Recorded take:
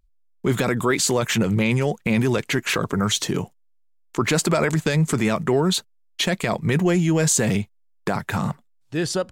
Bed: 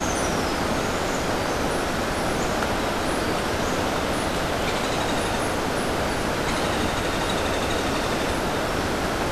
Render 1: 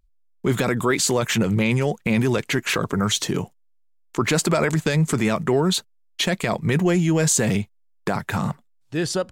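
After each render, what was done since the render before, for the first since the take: no audible change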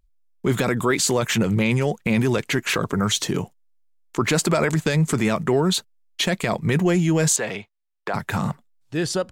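7.36–8.14 s: three-band isolator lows -17 dB, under 410 Hz, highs -16 dB, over 4.4 kHz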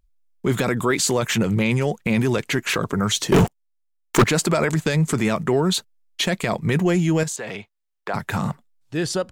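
3.32–4.24 s: waveshaping leveller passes 5; 7.23–8.09 s: compression, threshold -26 dBFS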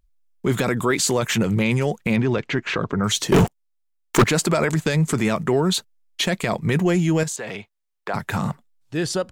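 2.16–3.04 s: distance through air 170 m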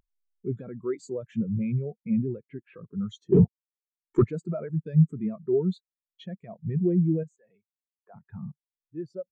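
upward compressor, threshold -33 dBFS; spectral contrast expander 2.5:1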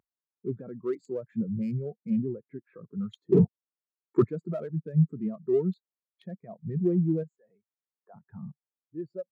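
local Wiener filter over 15 samples; Bessel high-pass 160 Hz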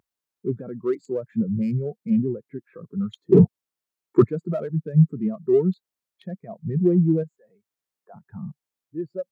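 trim +6.5 dB

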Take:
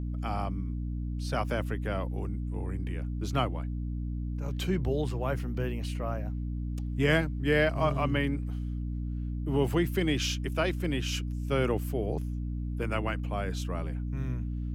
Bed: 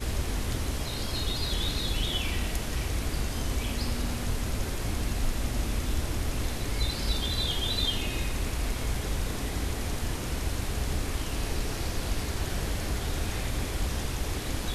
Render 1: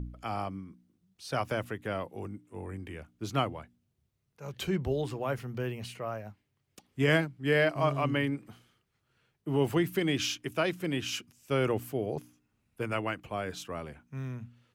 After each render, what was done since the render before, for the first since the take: de-hum 60 Hz, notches 5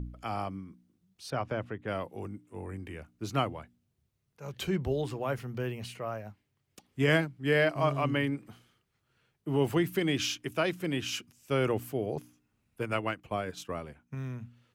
1.30–1.88 s: tape spacing loss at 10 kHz 23 dB; 2.59–3.45 s: band-stop 3.3 kHz; 12.81–14.15 s: transient shaper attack +4 dB, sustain -6 dB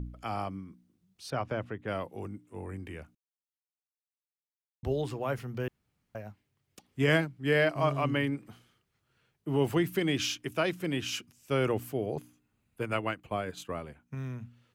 3.15–4.83 s: mute; 5.68–6.15 s: room tone; 12.07–14.03 s: band-stop 5.5 kHz, Q 6.6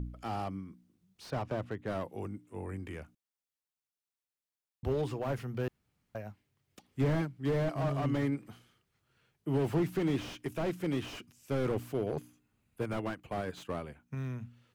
slew-rate limiter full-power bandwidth 18 Hz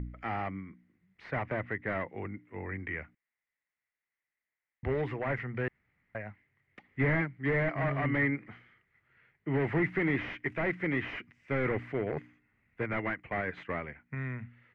resonant low-pass 2 kHz, resonance Q 9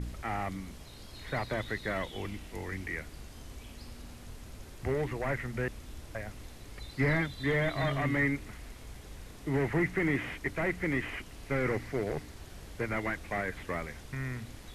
add bed -16.5 dB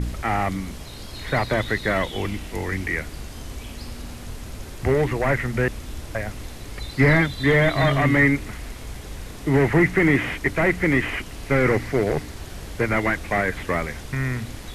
trim +11.5 dB

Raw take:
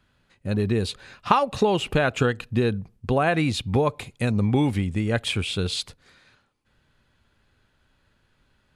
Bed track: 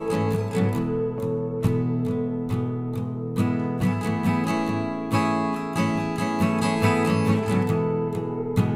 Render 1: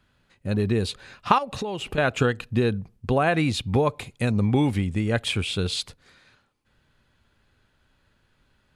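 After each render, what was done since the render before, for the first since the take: 1.38–1.98 s: compression 3:1, threshold -29 dBFS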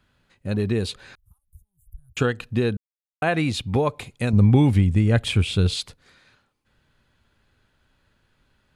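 1.15–2.17 s: inverse Chebyshev band-stop 230–5100 Hz, stop band 60 dB; 2.77–3.22 s: mute; 4.33–5.74 s: bass shelf 170 Hz +12 dB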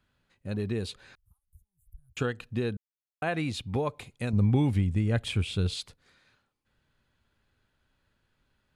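trim -8 dB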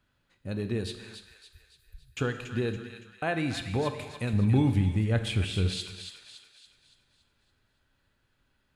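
feedback echo behind a high-pass 282 ms, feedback 47%, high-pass 1.4 kHz, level -7.5 dB; gated-style reverb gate 440 ms falling, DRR 8 dB

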